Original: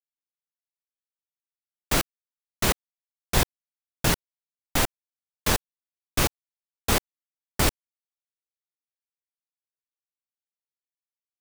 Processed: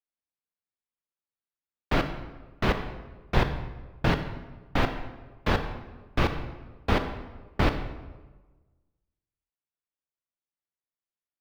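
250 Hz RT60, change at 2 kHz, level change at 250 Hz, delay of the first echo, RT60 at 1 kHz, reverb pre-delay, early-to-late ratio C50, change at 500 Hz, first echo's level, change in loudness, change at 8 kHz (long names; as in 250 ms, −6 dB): 1.3 s, −1.5 dB, +1.5 dB, no echo audible, 1.2 s, 26 ms, 9.0 dB, +1.0 dB, no echo audible, −3.5 dB, −23.5 dB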